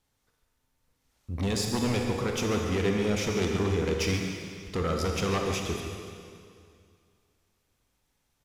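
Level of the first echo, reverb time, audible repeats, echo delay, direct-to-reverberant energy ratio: −11.5 dB, 2.3 s, 1, 140 ms, 1.5 dB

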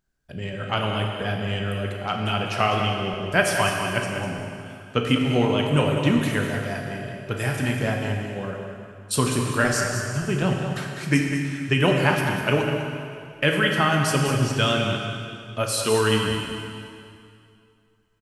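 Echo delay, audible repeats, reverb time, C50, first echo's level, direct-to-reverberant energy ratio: 200 ms, 1, 2.4 s, 2.0 dB, −8.5 dB, 0.5 dB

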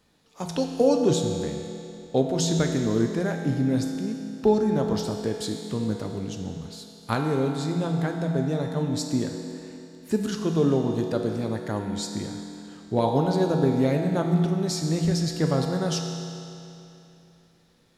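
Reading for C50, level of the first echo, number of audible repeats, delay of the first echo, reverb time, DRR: 4.0 dB, no echo audible, no echo audible, no echo audible, 2.9 s, 2.5 dB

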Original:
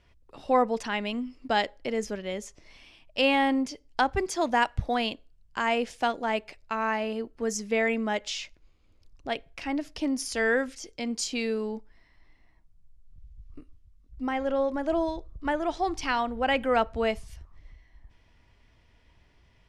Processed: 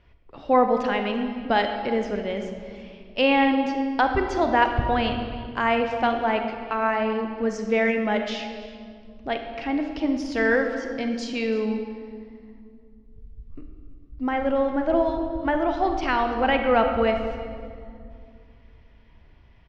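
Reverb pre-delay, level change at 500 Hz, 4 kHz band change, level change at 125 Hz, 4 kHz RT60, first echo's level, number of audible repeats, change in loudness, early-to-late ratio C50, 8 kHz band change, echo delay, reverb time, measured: 36 ms, +5.5 dB, +1.0 dB, +6.5 dB, 1.4 s, −20.5 dB, 1, +4.5 dB, 6.0 dB, −10.5 dB, 337 ms, 2.3 s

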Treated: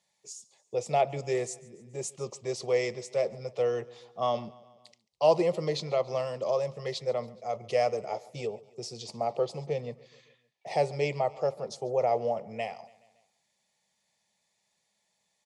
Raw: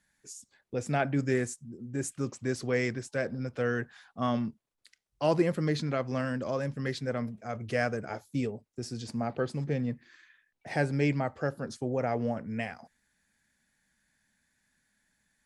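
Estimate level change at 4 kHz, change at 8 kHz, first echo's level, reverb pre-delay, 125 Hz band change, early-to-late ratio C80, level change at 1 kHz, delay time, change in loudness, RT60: +3.5 dB, +1.5 dB, −22.0 dB, no reverb audible, −7.0 dB, no reverb audible, +4.5 dB, 141 ms, +1.0 dB, no reverb audible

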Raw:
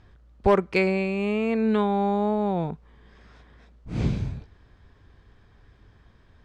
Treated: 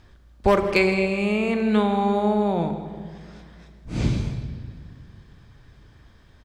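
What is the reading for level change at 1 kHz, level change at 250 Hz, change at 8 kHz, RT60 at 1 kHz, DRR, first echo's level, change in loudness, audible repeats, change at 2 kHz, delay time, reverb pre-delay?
+2.5 dB, +2.5 dB, can't be measured, 1.8 s, 6.5 dB, −15.5 dB, +2.5 dB, 1, +5.0 dB, 162 ms, 3 ms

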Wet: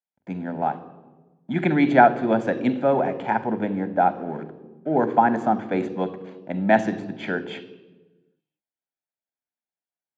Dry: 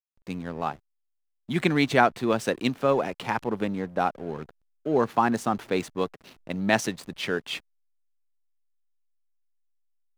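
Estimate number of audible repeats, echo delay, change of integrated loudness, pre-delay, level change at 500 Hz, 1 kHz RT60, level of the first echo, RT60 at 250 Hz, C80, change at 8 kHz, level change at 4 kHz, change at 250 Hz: no echo audible, no echo audible, +4.0 dB, 27 ms, +4.0 dB, 1.1 s, no echo audible, 1.6 s, 15.5 dB, below −10 dB, −7.5 dB, +4.5 dB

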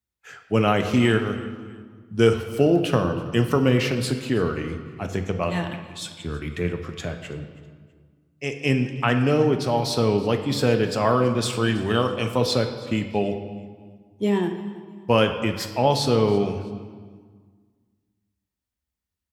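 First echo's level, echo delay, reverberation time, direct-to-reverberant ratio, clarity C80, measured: −21.5 dB, 325 ms, 1.6 s, 6.0 dB, 9.5 dB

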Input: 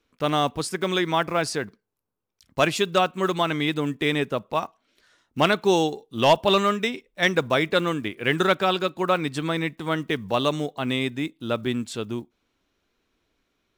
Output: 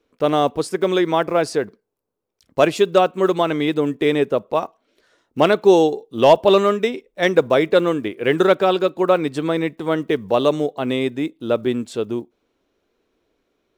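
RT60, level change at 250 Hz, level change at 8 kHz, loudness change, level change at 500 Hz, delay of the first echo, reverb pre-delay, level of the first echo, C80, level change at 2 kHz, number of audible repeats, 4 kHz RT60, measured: no reverb audible, +5.5 dB, can't be measured, +5.5 dB, +8.0 dB, no echo audible, no reverb audible, no echo audible, no reverb audible, 0.0 dB, no echo audible, no reverb audible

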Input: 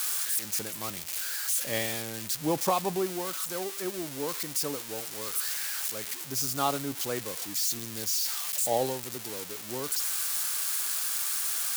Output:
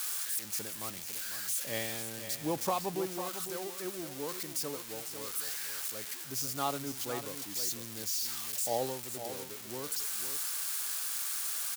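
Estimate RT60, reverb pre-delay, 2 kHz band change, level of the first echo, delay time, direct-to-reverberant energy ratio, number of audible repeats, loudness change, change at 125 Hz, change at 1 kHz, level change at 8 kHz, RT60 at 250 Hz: no reverb audible, no reverb audible, −5.0 dB, −10.0 dB, 501 ms, no reverb audible, 1, −5.0 dB, −5.0 dB, −5.0 dB, −5.0 dB, no reverb audible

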